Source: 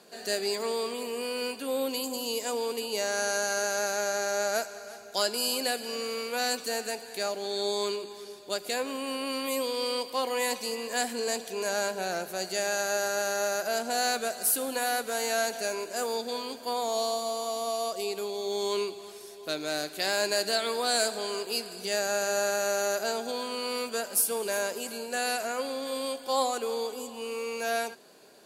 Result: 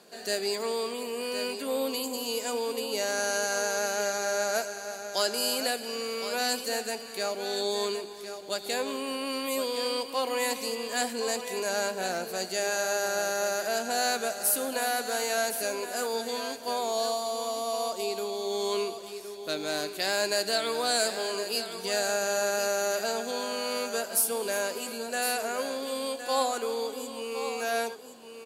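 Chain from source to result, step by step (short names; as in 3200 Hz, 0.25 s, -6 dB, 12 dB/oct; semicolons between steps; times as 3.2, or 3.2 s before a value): echo 1.064 s -10 dB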